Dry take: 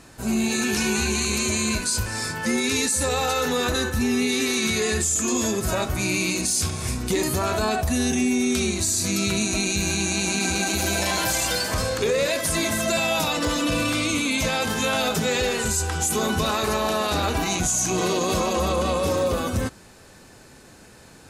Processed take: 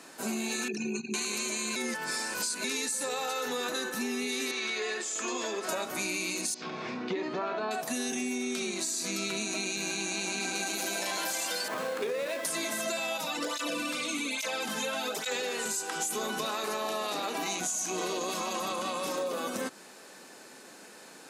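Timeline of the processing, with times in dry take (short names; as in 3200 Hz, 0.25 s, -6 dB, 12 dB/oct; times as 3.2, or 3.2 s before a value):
0.68–1.14 formant sharpening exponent 3
1.76–2.64 reverse
4.51–5.69 BPF 390–4200 Hz
6.54–7.71 Gaussian blur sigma 2.5 samples
8.38–10.55 high shelf 8900 Hz -8 dB
11.68–12.45 median filter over 9 samples
13.17–15.32 tape flanging out of phase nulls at 1.2 Hz, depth 3.2 ms
16.84–17.6 notch 1500 Hz
18.3–19.18 bell 470 Hz -8.5 dB
whole clip: Bessel high-pass 310 Hz, order 8; compressor, threshold -30 dBFS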